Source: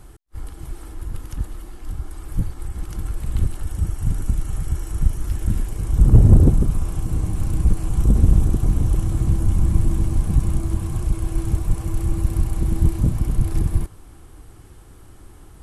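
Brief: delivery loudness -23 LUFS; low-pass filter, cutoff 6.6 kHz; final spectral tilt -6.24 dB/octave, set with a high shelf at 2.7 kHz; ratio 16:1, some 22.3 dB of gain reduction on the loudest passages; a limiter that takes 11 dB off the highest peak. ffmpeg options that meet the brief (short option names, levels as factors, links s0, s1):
-af "lowpass=6600,highshelf=f=2700:g=6.5,acompressor=threshold=0.0447:ratio=16,volume=7.94,alimiter=limit=0.282:level=0:latency=1"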